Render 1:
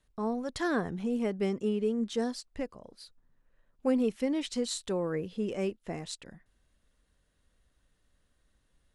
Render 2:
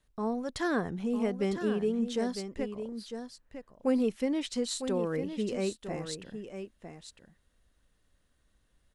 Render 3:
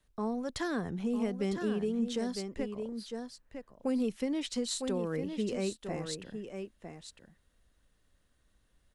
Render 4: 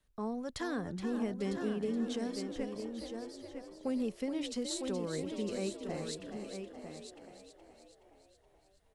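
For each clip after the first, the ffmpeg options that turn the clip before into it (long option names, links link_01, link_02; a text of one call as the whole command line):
ffmpeg -i in.wav -af "aecho=1:1:954:0.355" out.wav
ffmpeg -i in.wav -filter_complex "[0:a]acrossover=split=230|3000[link_01][link_02][link_03];[link_02]acompressor=threshold=-32dB:ratio=6[link_04];[link_01][link_04][link_03]amix=inputs=3:normalize=0" out.wav
ffmpeg -i in.wav -filter_complex "[0:a]asplit=8[link_01][link_02][link_03][link_04][link_05][link_06][link_07][link_08];[link_02]adelay=422,afreqshift=39,volume=-9dB[link_09];[link_03]adelay=844,afreqshift=78,volume=-14dB[link_10];[link_04]adelay=1266,afreqshift=117,volume=-19.1dB[link_11];[link_05]adelay=1688,afreqshift=156,volume=-24.1dB[link_12];[link_06]adelay=2110,afreqshift=195,volume=-29.1dB[link_13];[link_07]adelay=2532,afreqshift=234,volume=-34.2dB[link_14];[link_08]adelay=2954,afreqshift=273,volume=-39.2dB[link_15];[link_01][link_09][link_10][link_11][link_12][link_13][link_14][link_15]amix=inputs=8:normalize=0,volume=-3.5dB" out.wav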